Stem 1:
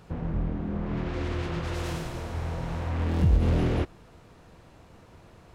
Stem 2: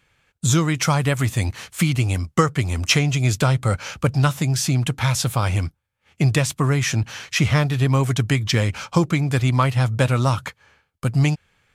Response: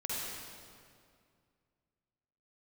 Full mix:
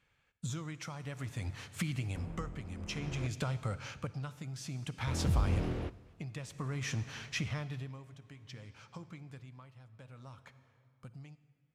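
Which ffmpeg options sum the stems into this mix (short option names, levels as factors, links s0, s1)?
-filter_complex "[0:a]adelay=2050,volume=0.355,asplit=3[s0][s1][s2];[s0]atrim=end=3.27,asetpts=PTS-STARTPTS,afade=t=out:st=3.266:d=0.004:c=hsin[s3];[s1]atrim=start=3.27:end=5.07,asetpts=PTS-STARTPTS,volume=0[s4];[s2]atrim=start=5.07,asetpts=PTS-STARTPTS,afade=t=in:d=0.004:c=hsin[s5];[s3][s4][s5]concat=n=3:v=0:a=1,asplit=2[s6][s7];[s7]volume=0.0794[s8];[1:a]highshelf=f=9000:g=-11,bandreject=f=360:w=12,acompressor=threshold=0.0891:ratio=6,volume=0.266,afade=t=out:st=7.76:d=0.35:silence=0.251189,asplit=2[s9][s10];[s10]volume=0.158[s11];[2:a]atrim=start_sample=2205[s12];[s8][s11]amix=inputs=2:normalize=0[s13];[s13][s12]afir=irnorm=-1:irlink=0[s14];[s6][s9][s14]amix=inputs=3:normalize=0,tremolo=f=0.56:d=0.62"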